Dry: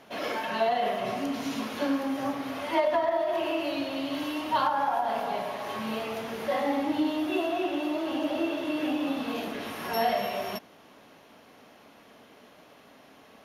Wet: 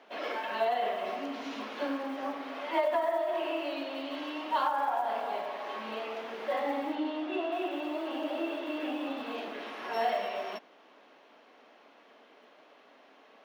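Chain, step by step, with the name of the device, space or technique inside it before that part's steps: early digital voice recorder (BPF 250–3900 Hz; block floating point 7-bit); HPF 260 Hz 12 dB/oct; 6.95–7.52 air absorption 85 m; gain -3 dB

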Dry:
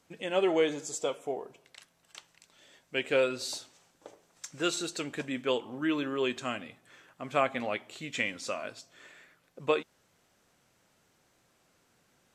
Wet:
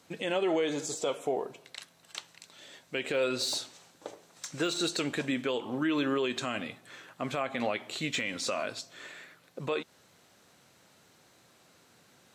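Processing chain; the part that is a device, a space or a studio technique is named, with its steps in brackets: broadcast voice chain (HPF 83 Hz; de-esser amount 90%; compressor 4:1, threshold -30 dBFS, peak gain reduction 8 dB; bell 4000 Hz +5.5 dB 0.25 oct; limiter -27 dBFS, peak gain reduction 10 dB); gain +7 dB

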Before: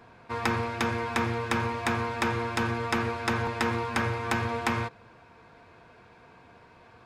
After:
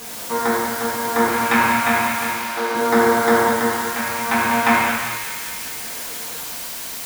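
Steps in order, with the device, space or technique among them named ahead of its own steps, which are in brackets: shortwave radio (BPF 250–2800 Hz; tremolo 0.64 Hz, depth 69%; LFO notch square 0.39 Hz 420–2600 Hz; white noise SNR 10 dB); 2.33–2.75 Chebyshev band-pass 390–4500 Hz, order 2; thin delay 0.198 s, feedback 68%, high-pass 1800 Hz, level -7 dB; non-linear reverb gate 0.42 s falling, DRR -5.5 dB; gain +8.5 dB

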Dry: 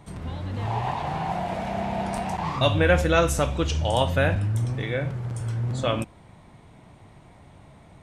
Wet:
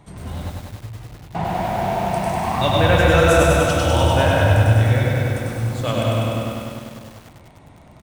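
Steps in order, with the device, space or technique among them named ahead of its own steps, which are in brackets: stairwell (reverb RT60 2.0 s, pre-delay 91 ms, DRR -1 dB); 0.5–1.35 passive tone stack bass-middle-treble 10-0-1; feedback echo 0.365 s, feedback 44%, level -21 dB; lo-fi delay 99 ms, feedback 80%, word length 7-bit, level -3 dB

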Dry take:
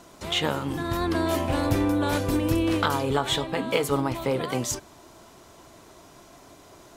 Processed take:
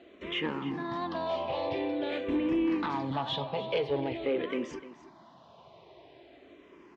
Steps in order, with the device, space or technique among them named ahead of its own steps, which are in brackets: 0.74–2.27 HPF 170 Hz -> 470 Hz 6 dB/oct; low shelf 320 Hz -3 dB; barber-pole phaser into a guitar amplifier (endless phaser -0.47 Hz; soft clip -23 dBFS, distortion -14 dB; speaker cabinet 87–3500 Hz, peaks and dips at 98 Hz -7 dB, 370 Hz +3 dB, 1400 Hz -10 dB); echo 0.3 s -15.5 dB

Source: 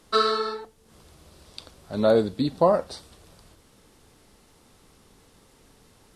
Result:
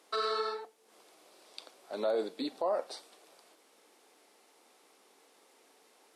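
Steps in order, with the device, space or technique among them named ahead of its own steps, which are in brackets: laptop speaker (HPF 320 Hz 24 dB/oct; bell 740 Hz +4.5 dB 0.47 oct; bell 2300 Hz +4 dB 0.31 oct; limiter -17.5 dBFS, peak gain reduction 11 dB); gain -5.5 dB

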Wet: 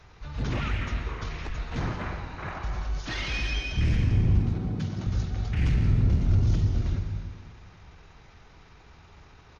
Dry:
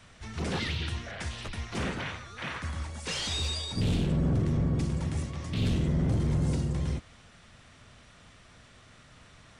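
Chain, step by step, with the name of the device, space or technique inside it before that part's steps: 4.39–5.07 HPF 200 Hz 24 dB/oct; monster voice (pitch shift -7 st; low shelf 210 Hz +5 dB; reverb RT60 1.7 s, pre-delay 0.117 s, DRR 6 dB)

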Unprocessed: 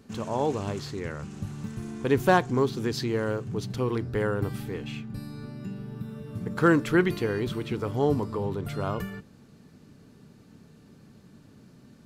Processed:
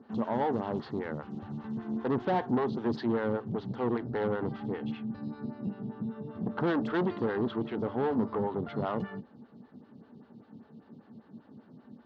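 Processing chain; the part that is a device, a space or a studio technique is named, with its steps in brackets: vibe pedal into a guitar amplifier (photocell phaser 5.1 Hz; tube stage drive 29 dB, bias 0.45; speaker cabinet 100–3700 Hz, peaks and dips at 230 Hz +7 dB, 840 Hz +6 dB, 2400 Hz -10 dB); gain +3 dB

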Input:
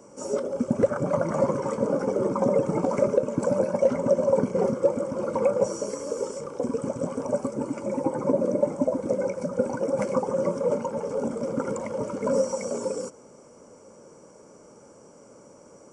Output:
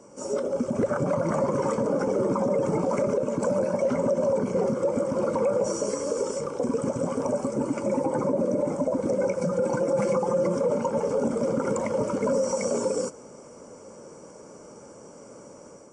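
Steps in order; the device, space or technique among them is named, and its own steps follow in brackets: 9.41–10.55 comb 5.8 ms, depth 66%; low-bitrate web radio (AGC gain up to 5 dB; limiter -16 dBFS, peak gain reduction 11.5 dB; MP3 48 kbps 22050 Hz)

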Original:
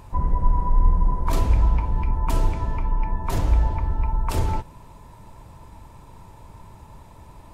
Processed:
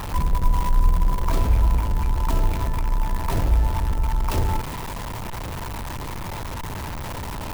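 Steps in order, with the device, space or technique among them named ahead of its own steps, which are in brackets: early CD player with a faulty converter (zero-crossing step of -24 dBFS; clock jitter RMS 0.03 ms); gain -1.5 dB

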